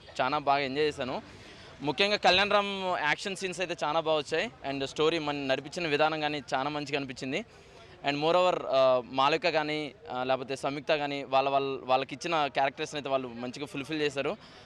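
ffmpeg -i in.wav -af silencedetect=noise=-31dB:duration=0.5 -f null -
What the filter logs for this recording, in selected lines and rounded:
silence_start: 1.19
silence_end: 1.83 | silence_duration: 0.64
silence_start: 7.41
silence_end: 8.05 | silence_duration: 0.64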